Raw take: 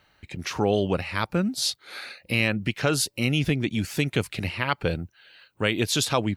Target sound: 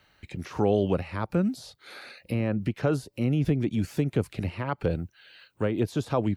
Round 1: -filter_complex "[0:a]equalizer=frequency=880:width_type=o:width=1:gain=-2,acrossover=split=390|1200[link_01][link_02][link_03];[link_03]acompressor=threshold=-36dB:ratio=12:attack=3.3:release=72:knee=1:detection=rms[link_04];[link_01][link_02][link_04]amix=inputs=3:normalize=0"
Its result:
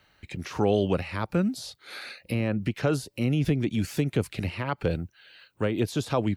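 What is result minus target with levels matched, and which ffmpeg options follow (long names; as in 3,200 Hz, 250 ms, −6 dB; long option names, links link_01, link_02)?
downward compressor: peak gain reduction −6.5 dB
-filter_complex "[0:a]equalizer=frequency=880:width_type=o:width=1:gain=-2,acrossover=split=390|1200[link_01][link_02][link_03];[link_03]acompressor=threshold=-43dB:ratio=12:attack=3.3:release=72:knee=1:detection=rms[link_04];[link_01][link_02][link_04]amix=inputs=3:normalize=0"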